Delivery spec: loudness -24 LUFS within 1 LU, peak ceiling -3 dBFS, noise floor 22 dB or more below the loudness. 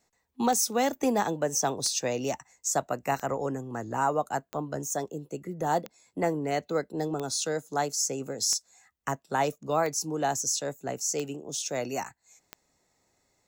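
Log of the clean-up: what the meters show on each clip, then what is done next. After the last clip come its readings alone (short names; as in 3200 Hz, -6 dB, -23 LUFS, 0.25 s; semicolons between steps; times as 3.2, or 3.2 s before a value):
clicks 10; loudness -29.5 LUFS; peak -14.0 dBFS; loudness target -24.0 LUFS
-> de-click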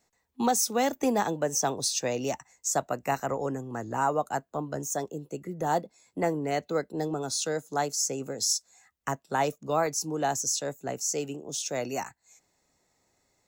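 clicks 0; loudness -29.5 LUFS; peak -14.0 dBFS; loudness target -24.0 LUFS
-> gain +5.5 dB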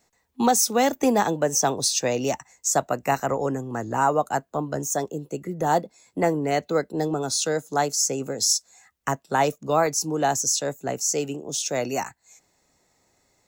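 loudness -24.0 LUFS; peak -8.5 dBFS; noise floor -69 dBFS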